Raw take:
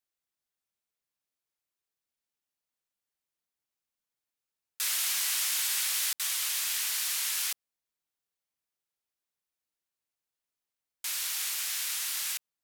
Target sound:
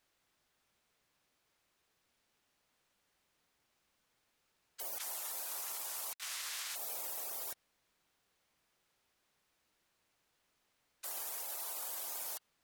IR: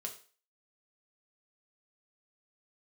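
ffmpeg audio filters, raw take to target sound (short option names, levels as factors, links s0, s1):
-filter_complex "[0:a]lowpass=f=3100:p=1,asettb=1/sr,asplit=3[s0][s1][s2];[s0]atrim=end=4.984[s3];[s1]atrim=start=4.98:end=6.76,asetpts=PTS-STARTPTS,afade=t=in:d=0.004:c=qsin,afade=t=out:st=1.776:d=0.004:c=qsin,agate=range=0.0447:threshold=0.0178:ratio=16:detection=peak[s4];[s2]atrim=start=6.756[s5];[s3][s4]acrossfade=d=0.004:c1=hsin:c2=qsin[s6];[s6][s5]acrossfade=d=0.004:c1=qsin:c2=hsin,afftfilt=real='re*lt(hypot(re,im),0.00631)':imag='im*lt(hypot(re,im),0.00631)':win_size=1024:overlap=0.75,alimiter=level_in=18.8:limit=0.0631:level=0:latency=1,volume=0.0531,volume=7.08"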